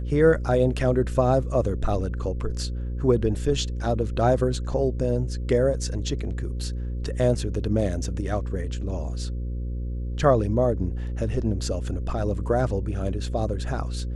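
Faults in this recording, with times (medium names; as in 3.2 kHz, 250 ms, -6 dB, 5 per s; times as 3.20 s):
buzz 60 Hz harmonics 9 -29 dBFS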